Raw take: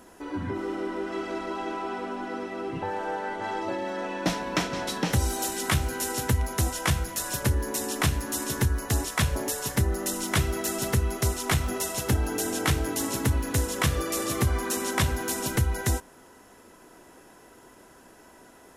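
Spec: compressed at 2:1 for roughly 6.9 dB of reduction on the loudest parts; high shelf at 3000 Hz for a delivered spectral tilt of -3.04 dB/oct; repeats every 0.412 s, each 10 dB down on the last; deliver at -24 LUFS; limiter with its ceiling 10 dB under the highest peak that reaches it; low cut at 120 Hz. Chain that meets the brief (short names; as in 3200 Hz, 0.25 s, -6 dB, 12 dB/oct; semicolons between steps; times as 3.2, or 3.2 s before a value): HPF 120 Hz; high shelf 3000 Hz +7.5 dB; compressor 2:1, threshold -32 dBFS; limiter -23.5 dBFS; feedback echo 0.412 s, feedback 32%, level -10 dB; gain +9 dB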